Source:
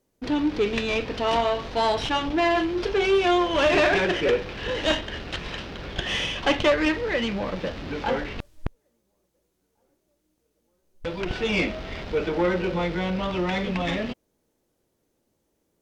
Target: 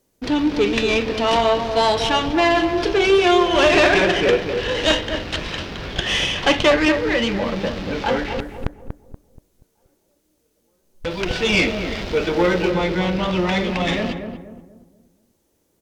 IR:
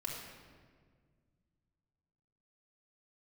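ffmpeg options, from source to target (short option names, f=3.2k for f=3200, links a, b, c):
-filter_complex "[0:a]asetnsamples=n=441:p=0,asendcmd='11.11 highshelf g 10.5;12.7 highshelf g 5.5',highshelf=f=3.6k:g=5.5,asplit=2[a][b];[b]adelay=239,lowpass=f=910:p=1,volume=-6dB,asplit=2[c][d];[d]adelay=239,lowpass=f=910:p=1,volume=0.41,asplit=2[e][f];[f]adelay=239,lowpass=f=910:p=1,volume=0.41,asplit=2[g][h];[h]adelay=239,lowpass=f=910:p=1,volume=0.41,asplit=2[i][j];[j]adelay=239,lowpass=f=910:p=1,volume=0.41[k];[a][c][e][g][i][k]amix=inputs=6:normalize=0,volume=4.5dB"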